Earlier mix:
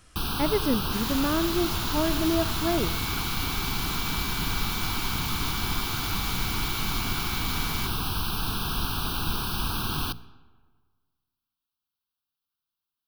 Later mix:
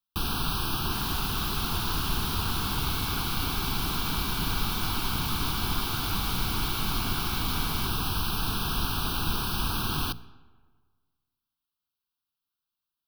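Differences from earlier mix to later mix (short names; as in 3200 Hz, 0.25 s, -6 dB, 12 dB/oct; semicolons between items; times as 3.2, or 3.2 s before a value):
speech: muted; second sound -7.5 dB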